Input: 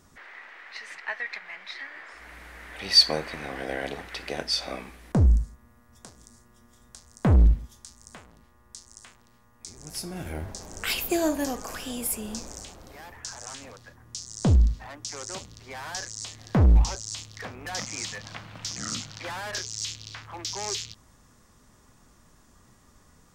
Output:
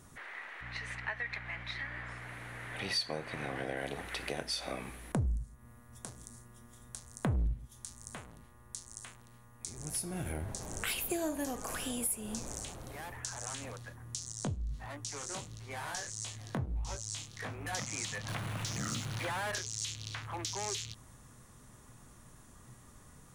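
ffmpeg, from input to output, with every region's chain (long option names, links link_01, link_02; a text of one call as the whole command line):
ffmpeg -i in.wav -filter_complex "[0:a]asettb=1/sr,asplit=3[link_01][link_02][link_03];[link_01]atrim=end=0.614[link_04];[link_02]atrim=start=0.61:end=3.77,asetpts=PTS-STARTPTS,afade=type=in:duration=0.004:curve=qsin,afade=type=out:start_time=3.156:duration=0.004:curve=qsin,highshelf=frequency=8500:gain=-10,aeval=exprs='val(0)+0.00316*(sin(2*PI*60*n/s)+sin(2*PI*2*60*n/s)/2+sin(2*PI*3*60*n/s)/3+sin(2*PI*4*60*n/s)/4+sin(2*PI*5*60*n/s)/5)':channel_layout=same[link_05];[link_03]atrim=start=3.766[link_06];[link_04][link_05]acrossfade=duration=0.004:curve1=hsin:curve2=qsin[link_07];[link_07][link_06]acrossfade=duration=0.004:curve1=qsin:curve2=hsin,asettb=1/sr,asplit=3[link_08][link_09][link_10];[link_08]atrim=end=14.324[link_11];[link_09]atrim=start=14.32:end=17.73,asetpts=PTS-STARTPTS,afade=type=in:duration=0.004:curve=qsin,afade=type=out:start_time=3.406:duration=0.004:curve=qsin,acompressor=threshold=-25dB:ratio=6:attack=3.2:release=140:knee=1:detection=peak,flanger=delay=17.5:depth=5.2:speed=1.5[link_12];[link_10]atrim=start=17.726[link_13];[link_11][link_12]acrossfade=duration=0.004:curve1=hsin:curve2=qsin[link_14];[link_14][link_13]acrossfade=duration=0.004:curve1=qsin:curve2=hsin,asettb=1/sr,asplit=3[link_15][link_16][link_17];[link_15]atrim=end=18.284[link_18];[link_16]atrim=start=18.28:end=19.52,asetpts=PTS-STARTPTS,afade=type=in:duration=0.004:curve=qsin,afade=type=out:start_time=1.236:duration=0.004:curve=qsin,aeval=exprs='val(0)+0.5*0.0141*sgn(val(0))':channel_layout=same,highshelf=frequency=5700:gain=-6[link_19];[link_17]atrim=start=19.516[link_20];[link_18][link_19]acrossfade=duration=0.004:curve1=hsin:curve2=qsin[link_21];[link_21][link_20]acrossfade=duration=0.004:curve1=qsin:curve2=hsin,equalizer=frequency=125:width_type=o:width=0.33:gain=9,equalizer=frequency=5000:width_type=o:width=0.33:gain=-6,equalizer=frequency=10000:width_type=o:width=0.33:gain=10,acompressor=threshold=-35dB:ratio=3" out.wav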